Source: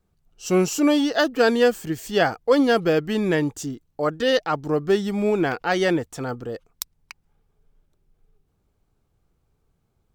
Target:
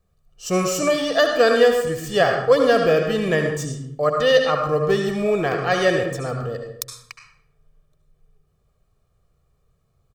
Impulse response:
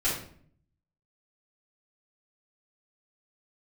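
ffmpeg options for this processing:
-filter_complex "[0:a]aecho=1:1:1.7:0.61,asplit=2[link_01][link_02];[link_02]highpass=130,equalizer=frequency=140:width_type=q:width=4:gain=6,equalizer=frequency=200:width_type=q:width=4:gain=-7,equalizer=frequency=1300:width_type=q:width=4:gain=5,equalizer=frequency=8900:width_type=q:width=4:gain=7,lowpass=frequency=9900:width=0.5412,lowpass=frequency=9900:width=1.3066[link_03];[1:a]atrim=start_sample=2205,asetrate=35721,aresample=44100,adelay=64[link_04];[link_03][link_04]afir=irnorm=-1:irlink=0,volume=-15dB[link_05];[link_01][link_05]amix=inputs=2:normalize=0"

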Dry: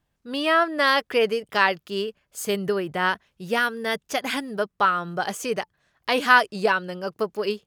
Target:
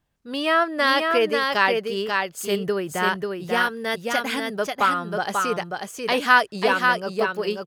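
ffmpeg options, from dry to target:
ffmpeg -i in.wav -af "aecho=1:1:540:0.631" out.wav

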